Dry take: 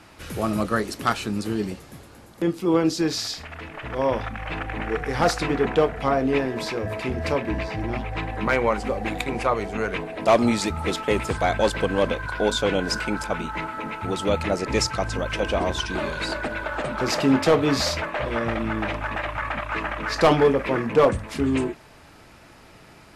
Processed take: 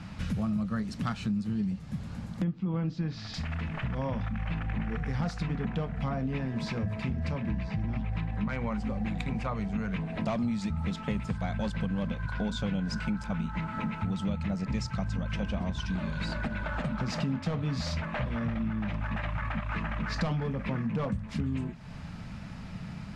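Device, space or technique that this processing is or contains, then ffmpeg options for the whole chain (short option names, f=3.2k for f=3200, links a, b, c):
jukebox: -filter_complex "[0:a]lowpass=6.5k,lowshelf=f=260:t=q:w=3:g=10,acompressor=threshold=-30dB:ratio=5,asettb=1/sr,asplit=3[a][b][c];[a]atrim=end=2.444[d];[b]atrim=start=2.44:end=3.34,asetpts=PTS-STARTPTS,afade=t=in:d=0.004:c=qsin,afade=t=out:st=0.896:d=0.004:c=qsin,lowpass=2.9k[e];[c]atrim=start=3.336[f];[d][e]acrossfade=d=0.004:c1=hsin:c2=qsin[g];[g][f]acrossfade=d=0.004:c1=qsin:c2=hsin"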